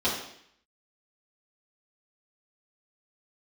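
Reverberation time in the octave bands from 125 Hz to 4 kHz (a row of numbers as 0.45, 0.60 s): 0.70, 0.70, 0.65, 0.65, 0.75, 0.70 s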